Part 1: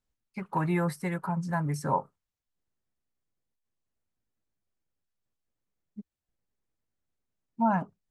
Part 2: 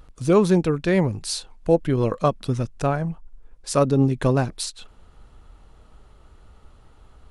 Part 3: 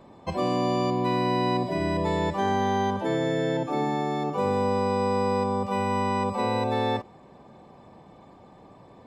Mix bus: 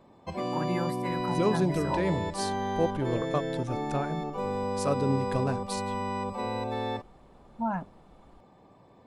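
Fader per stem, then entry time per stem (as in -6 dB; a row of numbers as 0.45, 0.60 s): -5.0, -9.5, -6.5 dB; 0.00, 1.10, 0.00 s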